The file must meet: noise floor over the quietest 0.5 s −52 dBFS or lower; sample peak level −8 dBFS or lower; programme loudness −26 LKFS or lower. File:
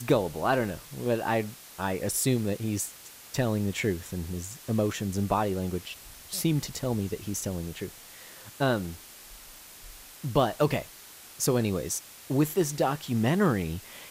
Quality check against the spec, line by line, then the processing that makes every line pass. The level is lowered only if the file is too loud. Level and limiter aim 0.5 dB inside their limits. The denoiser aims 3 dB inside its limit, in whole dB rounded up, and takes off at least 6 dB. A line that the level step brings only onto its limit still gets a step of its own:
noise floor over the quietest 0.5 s −49 dBFS: out of spec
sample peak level −10.5 dBFS: in spec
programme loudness −29.0 LKFS: in spec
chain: broadband denoise 6 dB, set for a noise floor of −49 dBFS

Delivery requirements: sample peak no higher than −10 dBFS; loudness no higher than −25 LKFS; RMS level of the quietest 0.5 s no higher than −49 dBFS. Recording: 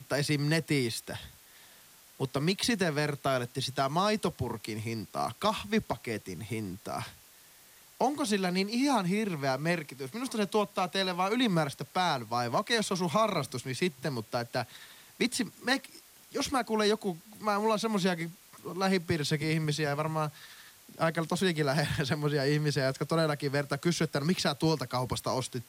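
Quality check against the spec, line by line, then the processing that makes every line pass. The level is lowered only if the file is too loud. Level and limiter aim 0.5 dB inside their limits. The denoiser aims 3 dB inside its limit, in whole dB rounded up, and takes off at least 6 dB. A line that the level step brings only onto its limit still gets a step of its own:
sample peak −14.0 dBFS: in spec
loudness −30.5 LKFS: in spec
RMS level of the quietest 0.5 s −57 dBFS: in spec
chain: no processing needed

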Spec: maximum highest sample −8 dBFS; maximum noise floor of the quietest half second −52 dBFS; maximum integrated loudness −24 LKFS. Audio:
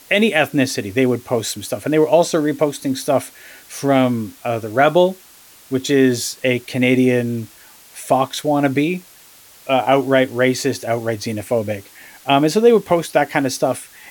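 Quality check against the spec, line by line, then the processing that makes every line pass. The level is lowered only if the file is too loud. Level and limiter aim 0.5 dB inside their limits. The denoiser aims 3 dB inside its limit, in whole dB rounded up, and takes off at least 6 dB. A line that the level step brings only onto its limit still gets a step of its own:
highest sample −1.5 dBFS: out of spec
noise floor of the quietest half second −46 dBFS: out of spec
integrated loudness −18.0 LKFS: out of spec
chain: level −6.5 dB
brickwall limiter −8.5 dBFS

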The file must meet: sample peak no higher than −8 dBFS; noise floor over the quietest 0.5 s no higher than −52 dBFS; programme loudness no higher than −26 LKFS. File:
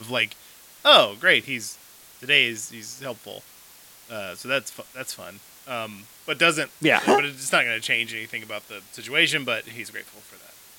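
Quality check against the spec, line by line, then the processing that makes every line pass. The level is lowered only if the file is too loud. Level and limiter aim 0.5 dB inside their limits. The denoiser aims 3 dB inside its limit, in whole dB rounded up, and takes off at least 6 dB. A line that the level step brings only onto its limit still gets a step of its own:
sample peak −2.0 dBFS: out of spec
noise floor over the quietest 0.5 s −49 dBFS: out of spec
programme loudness −21.0 LKFS: out of spec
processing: level −5.5 dB
brickwall limiter −8.5 dBFS

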